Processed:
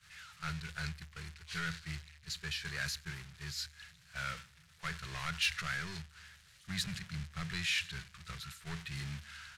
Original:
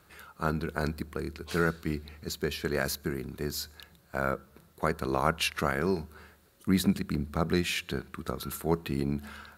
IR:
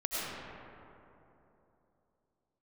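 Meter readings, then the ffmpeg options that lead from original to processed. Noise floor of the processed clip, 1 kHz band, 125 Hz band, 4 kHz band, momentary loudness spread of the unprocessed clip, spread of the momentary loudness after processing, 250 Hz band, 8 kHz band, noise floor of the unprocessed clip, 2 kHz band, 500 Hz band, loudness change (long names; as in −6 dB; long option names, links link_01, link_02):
−62 dBFS, −12.0 dB, −9.0 dB, −1.5 dB, 10 LU, 15 LU, −16.5 dB, −4.5 dB, −61 dBFS, −3.0 dB, −25.5 dB, −8.0 dB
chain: -filter_complex "[0:a]aeval=exprs='val(0)+0.5*0.0282*sgn(val(0))':channel_layout=same,acrossover=split=780[link_01][link_02];[link_01]acrusher=bits=6:mode=log:mix=0:aa=0.000001[link_03];[link_03][link_02]amix=inputs=2:normalize=0,lowpass=6800,lowshelf=frequency=190:gain=-7,agate=range=-33dB:threshold=-26dB:ratio=3:detection=peak,asplit=2[link_04][link_05];[link_05]acompressor=threshold=-35dB:ratio=6,volume=-3dB[link_06];[link_04][link_06]amix=inputs=2:normalize=0,asoftclip=type=tanh:threshold=-20.5dB,firequalizer=gain_entry='entry(150,0);entry(240,-26);entry(1700,0)':delay=0.05:min_phase=1,volume=-3dB"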